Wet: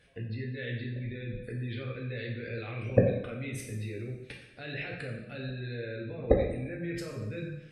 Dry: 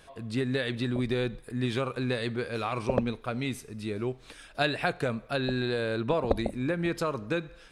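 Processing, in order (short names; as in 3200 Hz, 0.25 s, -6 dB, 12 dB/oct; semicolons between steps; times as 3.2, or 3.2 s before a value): level quantiser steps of 23 dB; graphic EQ 125/500/1000/2000 Hz +11/+5/-11/+11 dB; spectral gate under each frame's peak -30 dB strong; two-slope reverb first 0.74 s, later 2.1 s, from -19 dB, DRR -2 dB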